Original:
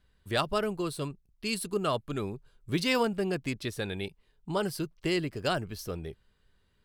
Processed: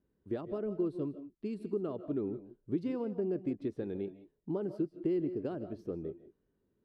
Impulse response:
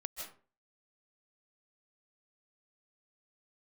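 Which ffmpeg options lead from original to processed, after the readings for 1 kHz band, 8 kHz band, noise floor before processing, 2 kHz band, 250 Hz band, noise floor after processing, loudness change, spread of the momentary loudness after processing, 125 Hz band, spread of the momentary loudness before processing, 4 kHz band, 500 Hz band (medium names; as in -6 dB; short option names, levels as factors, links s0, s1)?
-17.0 dB, under -30 dB, -70 dBFS, -23.5 dB, -1.5 dB, -79 dBFS, -5.0 dB, 8 LU, -7.5 dB, 11 LU, under -25 dB, -4.0 dB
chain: -filter_complex "[0:a]acompressor=threshold=0.0316:ratio=6,bandpass=f=320:t=q:w=2:csg=0,asplit=2[s0][s1];[1:a]atrim=start_sample=2205,afade=t=out:st=0.24:d=0.01,atrim=end_sample=11025,lowshelf=f=470:g=10[s2];[s1][s2]afir=irnorm=-1:irlink=0,volume=0.531[s3];[s0][s3]amix=inputs=2:normalize=0"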